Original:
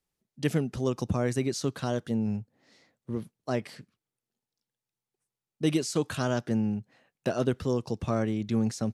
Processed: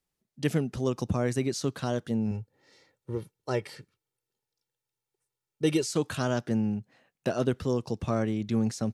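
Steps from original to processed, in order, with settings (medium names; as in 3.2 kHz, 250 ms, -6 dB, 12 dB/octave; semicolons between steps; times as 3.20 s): 2.31–5.86 s: comb 2.2 ms, depth 63%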